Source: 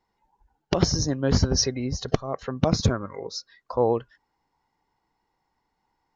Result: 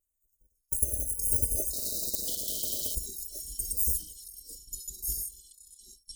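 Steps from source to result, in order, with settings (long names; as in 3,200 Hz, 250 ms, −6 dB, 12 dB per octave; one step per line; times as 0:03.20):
samples in bit-reversed order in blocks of 256 samples
linear-phase brick-wall band-stop 660–5,900 Hz
low-shelf EQ 200 Hz +4 dB
delay with pitch and tempo change per echo 276 ms, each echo −4 semitones, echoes 3, each echo −6 dB
graphic EQ with 10 bands 125 Hz −9 dB, 250 Hz −6 dB, 1,000 Hz −5 dB, 4,000 Hz −4 dB
0:01.73–0:02.95: every bin compressed towards the loudest bin 10 to 1
level −6.5 dB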